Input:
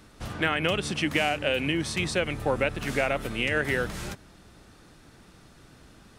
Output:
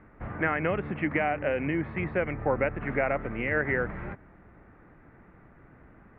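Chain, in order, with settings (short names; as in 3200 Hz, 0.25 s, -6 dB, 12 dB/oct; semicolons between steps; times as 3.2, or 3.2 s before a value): elliptic low-pass 2100 Hz, stop band 70 dB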